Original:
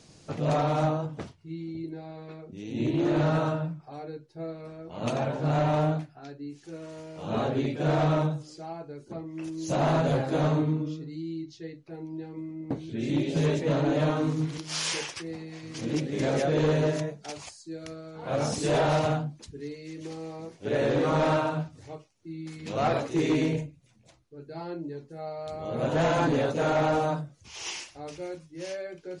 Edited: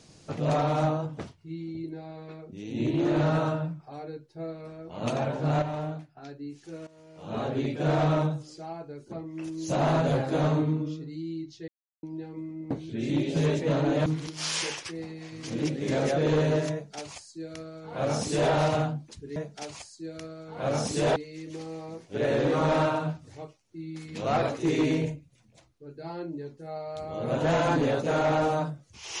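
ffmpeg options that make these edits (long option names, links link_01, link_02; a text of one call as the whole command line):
ffmpeg -i in.wav -filter_complex "[0:a]asplit=9[link_01][link_02][link_03][link_04][link_05][link_06][link_07][link_08][link_09];[link_01]atrim=end=5.622[link_10];[link_02]atrim=start=5.618:end=6.172,asetpts=PTS-STARTPTS,volume=-8dB[link_11];[link_03]atrim=start=6.168:end=6.87,asetpts=PTS-STARTPTS,afade=type=out:start_time=0.698:duration=0.004:curve=hsin:silence=0.158489[link_12];[link_04]atrim=start=6.87:end=11.68,asetpts=PTS-STARTPTS,afade=type=in:duration=0.87:silence=0.158489,afade=type=out:start_time=4.806:duration=0.004:curve=hsin[link_13];[link_05]atrim=start=11.68:end=12.03,asetpts=PTS-STARTPTS,volume=0[link_14];[link_06]atrim=start=12.03:end=14.062,asetpts=PTS-STARTPTS,afade=type=in:duration=0.004:curve=hsin[link_15];[link_07]atrim=start=14.368:end=19.672[link_16];[link_08]atrim=start=17.028:end=18.832[link_17];[link_09]atrim=start=19.668[link_18];[link_10][link_11]acrossfade=duration=0.004:curve1=hsin:curve2=hsin[link_19];[link_12][link_13][link_14][link_15]concat=n=4:v=0:a=1[link_20];[link_19][link_20]acrossfade=duration=0.004:curve1=hsin:curve2=hsin[link_21];[link_21][link_16]acrossfade=duration=0.004:curve1=hsin:curve2=hsin[link_22];[link_22][link_17]acrossfade=duration=0.004:curve1=hsin:curve2=hsin[link_23];[link_23][link_18]acrossfade=duration=0.004:curve1=hsin:curve2=hsin" out.wav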